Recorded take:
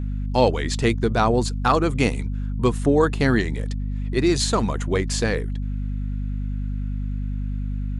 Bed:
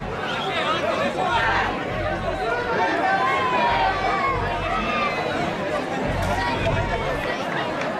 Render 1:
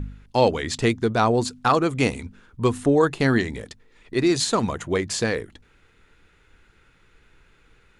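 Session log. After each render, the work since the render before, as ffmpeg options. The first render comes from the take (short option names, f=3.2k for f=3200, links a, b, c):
-af "bandreject=f=50:t=h:w=4,bandreject=f=100:t=h:w=4,bandreject=f=150:t=h:w=4,bandreject=f=200:t=h:w=4,bandreject=f=250:t=h:w=4"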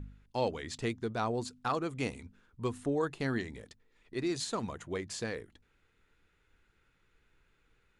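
-af "volume=-13.5dB"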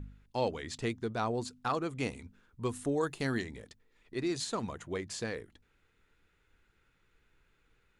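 -filter_complex "[0:a]asettb=1/sr,asplit=3[a][b][c];[a]atrim=end=2.694[d];[b]atrim=start=2.69:end=3.44,asetpts=PTS-STARTPTS,afade=t=in:d=0.004:c=qsin,afade=t=out:st=0.746:d=0.004:c=qsin,highshelf=f=6.2k:g=11.5[e];[c]atrim=start=3.436[f];[d][e]acrossfade=d=0.004:c1=hsin:c2=qsin[g];[g][f]acrossfade=d=0.004:c1=qsin:c2=hsin"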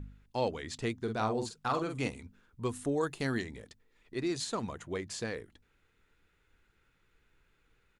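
-filter_complex "[0:a]asplit=3[a][b][c];[a]afade=t=out:st=1.06:d=0.02[d];[b]asplit=2[e][f];[f]adelay=46,volume=-6dB[g];[e][g]amix=inputs=2:normalize=0,afade=t=in:st=1.06:d=0.02,afade=t=out:st=2.07:d=0.02[h];[c]afade=t=in:st=2.07:d=0.02[i];[d][h][i]amix=inputs=3:normalize=0"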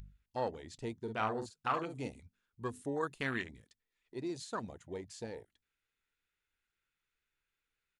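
-af "afwtdn=0.0141,tiltshelf=f=1.2k:g=-7"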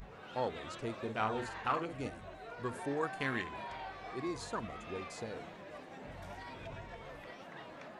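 -filter_complex "[1:a]volume=-24.5dB[a];[0:a][a]amix=inputs=2:normalize=0"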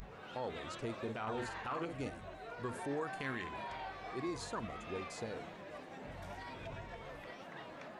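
-af "alimiter=level_in=6.5dB:limit=-24dB:level=0:latency=1:release=28,volume=-6.5dB,acompressor=mode=upward:threshold=-55dB:ratio=2.5"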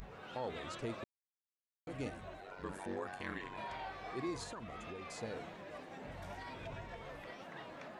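-filter_complex "[0:a]asettb=1/sr,asplit=3[a][b][c];[a]atrim=end=2.404[d];[b]atrim=start=2.4:end=3.58,asetpts=PTS-STARTPTS,afade=t=in:d=0.004:c=qsin,afade=t=out:st=1.176:d=0.004:c=qsin,aeval=exprs='val(0)*sin(2*PI*47*n/s)':c=same[e];[c]atrim=start=3.576[f];[d][e]acrossfade=d=0.004:c1=hsin:c2=qsin[g];[g][f]acrossfade=d=0.004:c1=qsin:c2=hsin,asettb=1/sr,asplit=3[h][i][j];[h]atrim=end=4.434[k];[i]atrim=start=4.43:end=5.23,asetpts=PTS-STARTPTS,afade=t=in:d=0.004:c=qsin,afade=t=out:st=0.796:d=0.004:c=qsin,acompressor=threshold=-42dB:ratio=10:attack=3.2:release=140:knee=1:detection=peak[l];[j]atrim=start=5.226[m];[k][l]acrossfade=d=0.004:c1=hsin:c2=qsin[n];[n][m]acrossfade=d=0.004:c1=qsin:c2=hsin,asplit=3[o][p][q];[o]atrim=end=1.04,asetpts=PTS-STARTPTS,afade=t=out:st=1.036:d=0.004:c=hsin[r];[p]atrim=start=1.04:end=1.87,asetpts=PTS-STARTPTS,volume=0[s];[q]atrim=start=1.87,asetpts=PTS-STARTPTS,afade=t=in:d=0.004:c=hsin[t];[r][s][t]concat=n=3:v=0:a=1"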